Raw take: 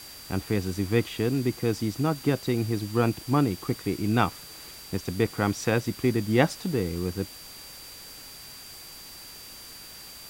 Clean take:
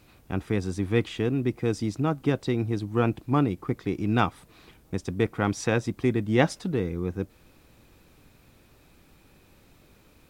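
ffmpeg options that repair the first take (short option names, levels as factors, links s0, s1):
-af "bandreject=f=4700:w=30,afftdn=nr=13:nf=-44"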